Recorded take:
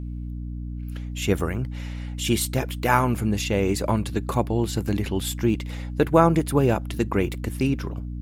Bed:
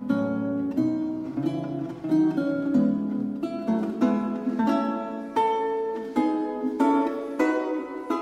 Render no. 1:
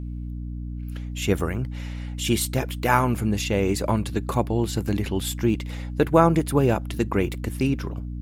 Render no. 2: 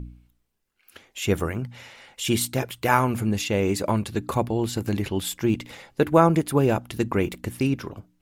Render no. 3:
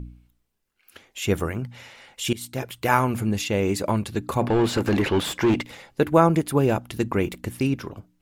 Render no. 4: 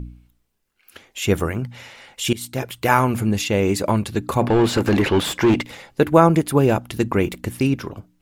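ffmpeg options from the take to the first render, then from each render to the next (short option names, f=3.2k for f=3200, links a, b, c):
-af anull
-af "bandreject=f=60:t=h:w=4,bandreject=f=120:t=h:w=4,bandreject=f=180:t=h:w=4,bandreject=f=240:t=h:w=4,bandreject=f=300:t=h:w=4"
-filter_complex "[0:a]asplit=3[a][b][c];[a]afade=t=out:st=4.41:d=0.02[d];[b]asplit=2[e][f];[f]highpass=f=720:p=1,volume=25dB,asoftclip=type=tanh:threshold=-11dB[g];[e][g]amix=inputs=2:normalize=0,lowpass=f=1.4k:p=1,volume=-6dB,afade=t=in:st=4.41:d=0.02,afade=t=out:st=5.61:d=0.02[h];[c]afade=t=in:st=5.61:d=0.02[i];[d][h][i]amix=inputs=3:normalize=0,asplit=2[j][k];[j]atrim=end=2.33,asetpts=PTS-STARTPTS,afade=t=out:st=2.326:d=0.004:c=hsin:silence=0.105925[l];[k]atrim=start=2.33,asetpts=PTS-STARTPTS,afade=t=in:d=0.63:c=qsin:silence=0.105925[m];[l][m]concat=n=2:v=0:a=1"
-af "volume=4dB,alimiter=limit=-1dB:level=0:latency=1"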